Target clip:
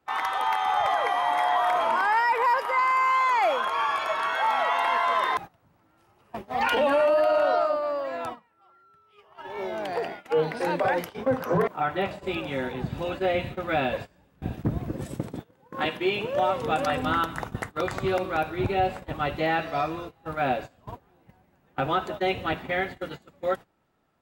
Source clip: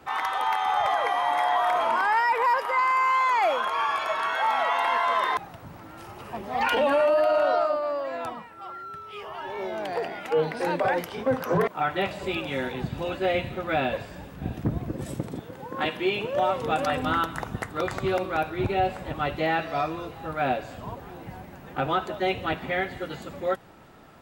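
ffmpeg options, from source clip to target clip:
ffmpeg -i in.wav -filter_complex "[0:a]agate=range=-20dB:threshold=-34dB:ratio=16:detection=peak,asplit=3[link_01][link_02][link_03];[link_01]afade=type=out:start_time=11.15:duration=0.02[link_04];[link_02]adynamicequalizer=threshold=0.00794:dfrequency=1800:dqfactor=0.7:tfrequency=1800:tqfactor=0.7:attack=5:release=100:ratio=0.375:range=2.5:mode=cutabove:tftype=highshelf,afade=type=in:start_time=11.15:duration=0.02,afade=type=out:start_time=13.39:duration=0.02[link_05];[link_03]afade=type=in:start_time=13.39:duration=0.02[link_06];[link_04][link_05][link_06]amix=inputs=3:normalize=0" out.wav

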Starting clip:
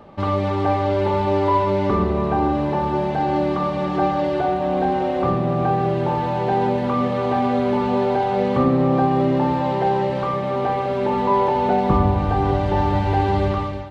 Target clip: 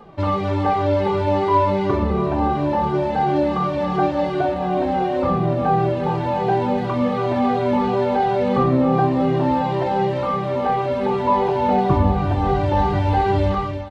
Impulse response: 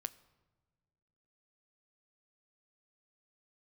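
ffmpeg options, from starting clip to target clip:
-filter_complex "[0:a]asplit=2[link_01][link_02];[link_02]adelay=2,afreqshift=-2.8[link_03];[link_01][link_03]amix=inputs=2:normalize=1,volume=3.5dB"

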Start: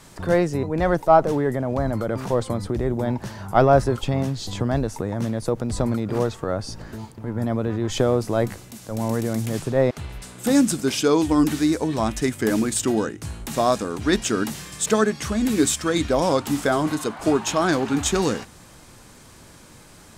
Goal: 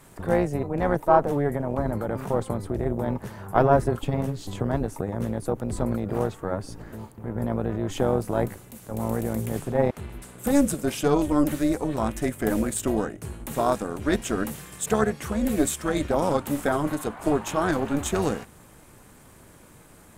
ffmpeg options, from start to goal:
ffmpeg -i in.wav -af "equalizer=frequency=5100:width=0.93:gain=-11,tremolo=f=290:d=0.71,highshelf=frequency=6600:gain=5.5" out.wav

